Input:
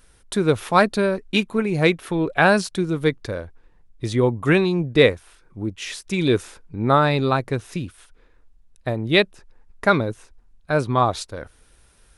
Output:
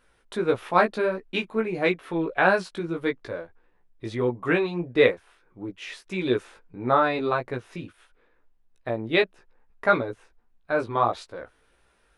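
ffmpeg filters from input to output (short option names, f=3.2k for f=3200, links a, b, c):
-af "bass=f=250:g=-8,treble=f=4k:g=-13,flanger=delay=16:depth=2.1:speed=1.6,equalizer=f=70:w=0.86:g=-4"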